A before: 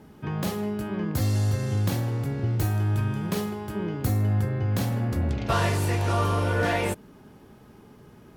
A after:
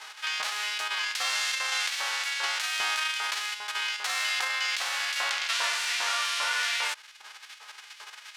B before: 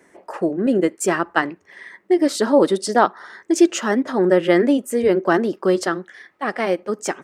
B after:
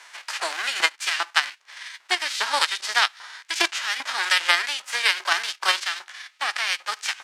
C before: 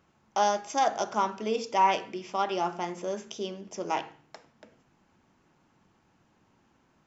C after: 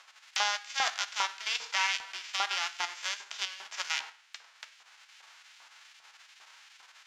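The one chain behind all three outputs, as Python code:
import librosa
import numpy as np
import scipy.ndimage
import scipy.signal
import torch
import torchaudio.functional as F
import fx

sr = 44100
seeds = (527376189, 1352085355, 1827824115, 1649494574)

p1 = fx.envelope_flatten(x, sr, power=0.3)
p2 = scipy.signal.sosfilt(scipy.signal.butter(2, 450.0, 'highpass', fs=sr, output='sos'), p1)
p3 = fx.level_steps(p2, sr, step_db=17)
p4 = p2 + (p3 * 10.0 ** (1.0 / 20.0))
p5 = scipy.signal.sosfilt(scipy.signal.butter(2, 5100.0, 'lowpass', fs=sr, output='sos'), p4)
p6 = fx.filter_lfo_highpass(p5, sr, shape='saw_up', hz=2.5, low_hz=930.0, high_hz=2300.0, q=0.93)
p7 = fx.band_squash(p6, sr, depth_pct=40)
y = p7 * 10.0 ** (-3.0 / 20.0)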